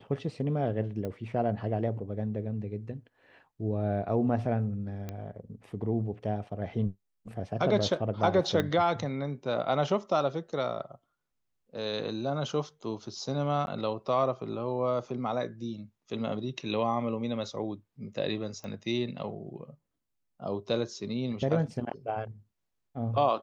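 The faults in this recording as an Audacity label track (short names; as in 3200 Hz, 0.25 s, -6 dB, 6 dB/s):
1.050000	1.050000	pop -24 dBFS
5.090000	5.090000	pop -23 dBFS
8.600000	8.600000	pop -15 dBFS
13.660000	13.670000	gap 11 ms
18.640000	18.640000	pop -28 dBFS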